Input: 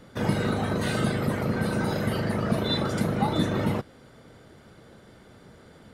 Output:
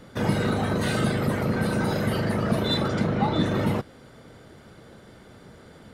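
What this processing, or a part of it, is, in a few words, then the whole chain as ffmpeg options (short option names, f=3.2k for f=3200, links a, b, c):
parallel distortion: -filter_complex "[0:a]asettb=1/sr,asplit=3[a][b][c];[a]atrim=end=2.884[d];[b]atrim=start=2.88:end=3.46,asetpts=PTS-STARTPTS,afade=t=in:d=0.004:c=qsin,afade=t=out:st=0.576:d=0.004:c=qsin,lowpass=4.9k[e];[c]atrim=start=3.456[f];[d][e]acrossfade=d=0.004:c1=hsin:c2=qsin[g];[g][f]acrossfade=d=0.004:c1=qsin:c2=hsin,asplit=2[h][i];[i]asoftclip=type=hard:threshold=-27.5dB,volume=-8.5dB[j];[h][j]amix=inputs=2:normalize=0"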